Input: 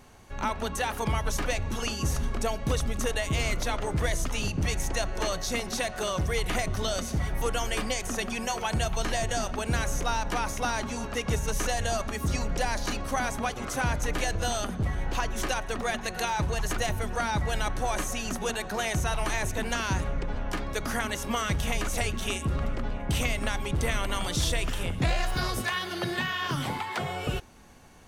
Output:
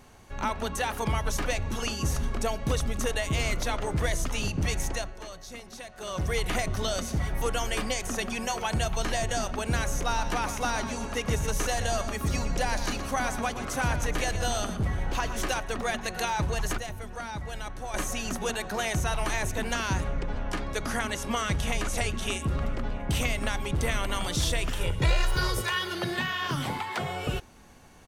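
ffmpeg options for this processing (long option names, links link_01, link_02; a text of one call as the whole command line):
ffmpeg -i in.wav -filter_complex "[0:a]asplit=3[link_01][link_02][link_03];[link_01]afade=type=out:start_time=10.09:duration=0.02[link_04];[link_02]aecho=1:1:120:0.299,afade=type=in:start_time=10.09:duration=0.02,afade=type=out:start_time=15.6:duration=0.02[link_05];[link_03]afade=type=in:start_time=15.6:duration=0.02[link_06];[link_04][link_05][link_06]amix=inputs=3:normalize=0,asettb=1/sr,asplit=3[link_07][link_08][link_09];[link_07]atrim=end=20.064[link_10];[link_08]atrim=start=20.06:end=22.41,asetpts=PTS-STARTPTS,afade=type=in:duration=0.004:curve=qsin,afade=type=out:start_time=2.346:duration=0.004:curve=qsin,lowpass=frequency=12000:width=0.5412,lowpass=frequency=12000:width=1.3066[link_11];[link_09]atrim=start=22.406[link_12];[link_10][link_11]acrossfade=duration=0.004:curve1=hsin:curve2=qsin[link_13];[link_13][link_12]acrossfade=duration=0.004:curve1=qsin:curve2=hsin,asettb=1/sr,asplit=3[link_14][link_15][link_16];[link_14]atrim=end=24.804[link_17];[link_15]atrim=start=24.8:end=25.95,asetpts=PTS-STARTPTS,afade=type=in:duration=0.004:curve=qsin,afade=type=out:start_time=1.146:duration=0.004:curve=qsin,aecho=1:1:2.1:0.65,atrim=end_sample=50715[link_18];[link_16]atrim=start=25.946[link_19];[link_17][link_18]acrossfade=duration=0.004:curve1=hsin:curve2=qsin[link_20];[link_20][link_19]acrossfade=duration=0.004:curve1=qsin:curve2=hsin,asplit=5[link_21][link_22][link_23][link_24][link_25];[link_21]atrim=end=5.17,asetpts=PTS-STARTPTS,afade=type=out:start_time=4.86:duration=0.31:silence=0.237137[link_26];[link_22]atrim=start=5.17:end=5.97,asetpts=PTS-STARTPTS,volume=-12.5dB[link_27];[link_23]atrim=start=5.97:end=16.782,asetpts=PTS-STARTPTS,afade=type=in:duration=0.31:silence=0.237137[link_28];[link_24]atrim=start=16.778:end=17.942,asetpts=PTS-STARTPTS,volume=-8dB[link_29];[link_25]atrim=start=17.938[link_30];[link_26][link_27][link_28]concat=n=3:v=0:a=1[link_31];[link_31][link_29]acrossfade=duration=0.004:curve1=hsin:curve2=hsin[link_32];[link_32][link_30]acrossfade=duration=0.004:curve1=hsin:curve2=hsin" out.wav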